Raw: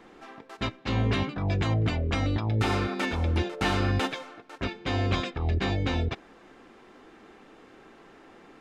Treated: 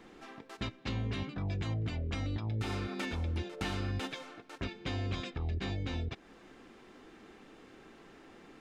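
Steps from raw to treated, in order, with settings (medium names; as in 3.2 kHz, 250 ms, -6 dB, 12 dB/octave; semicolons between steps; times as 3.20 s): peaking EQ 870 Hz -5.5 dB 2.6 oct; compression 2.5:1, threshold -36 dBFS, peak gain reduction 9.5 dB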